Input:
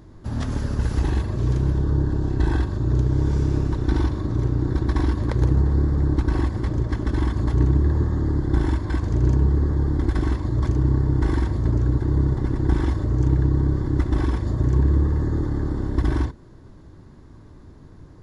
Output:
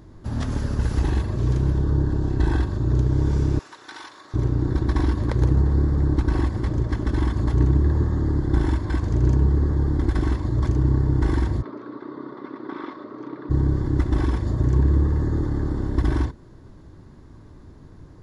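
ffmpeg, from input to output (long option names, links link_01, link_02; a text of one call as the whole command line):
ffmpeg -i in.wav -filter_complex "[0:a]asettb=1/sr,asplit=3[link_01][link_02][link_03];[link_01]atrim=end=3.594[link_04];[link_02]atrim=start=3.59:end=4.34,asetpts=PTS-STARTPTS,afade=type=in:duration=0.004:curve=qsin,afade=type=out:start_time=0.746:duration=0.004:curve=qsin,highpass=1200[link_05];[link_03]atrim=start=4.336[link_06];[link_04][link_05]acrossfade=duration=0.004:curve1=hsin:curve2=qsin[link_07];[link_07][link_06]acrossfade=duration=0.004:curve1=qsin:curve2=hsin,asplit=3[link_08][link_09][link_10];[link_08]afade=type=out:start_time=11.61:duration=0.02[link_11];[link_09]highpass=frequency=300:width=0.5412,highpass=frequency=300:width=1.3066,equalizer=frequency=330:width_type=q:width=4:gain=-6,equalizer=frequency=470:width_type=q:width=4:gain=-5,equalizer=frequency=790:width_type=q:width=4:gain=-9,equalizer=frequency=1200:width_type=q:width=4:gain=6,equalizer=frequency=1700:width_type=q:width=4:gain=-6,equalizer=frequency=2900:width_type=q:width=4:gain=-8,lowpass=frequency=3600:width=0.5412,lowpass=frequency=3600:width=1.3066,afade=type=in:start_time=11.61:duration=0.02,afade=type=out:start_time=13.49:duration=0.02[link_12];[link_10]afade=type=in:start_time=13.49:duration=0.02[link_13];[link_11][link_12][link_13]amix=inputs=3:normalize=0" out.wav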